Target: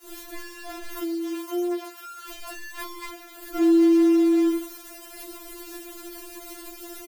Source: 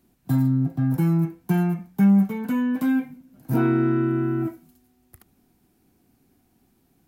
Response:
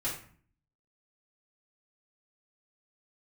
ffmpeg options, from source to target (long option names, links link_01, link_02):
-filter_complex "[0:a]aeval=exprs='val(0)+0.5*0.0531*sgn(val(0))':channel_layout=same,acrossover=split=560[link_01][link_02];[link_01]adelay=40[link_03];[link_03][link_02]amix=inputs=2:normalize=0,agate=range=-33dB:threshold=-26dB:ratio=3:detection=peak,asettb=1/sr,asplit=3[link_04][link_05][link_06];[link_04]atrim=end=0.994[link_07];[link_05]atrim=start=0.99:end=2.3,asetpts=PTS-STARTPTS,afade=type=in:duration=0.004:curve=qsin,afade=type=out:start_time=1.306:duration=0.004:curve=qsin,highpass=frequency=430:poles=1[link_08];[link_06]atrim=start=2.296[link_09];[link_07][link_08]acrossfade=duration=0.004:curve1=hsin:curve2=qsin[link_10];[link_10][link_09]acrossfade=duration=0.004:curve1=qsin:curve2=hsin,afftfilt=real='re*4*eq(mod(b,16),0)':imag='im*4*eq(mod(b,16),0)':win_size=2048:overlap=0.75,volume=1dB"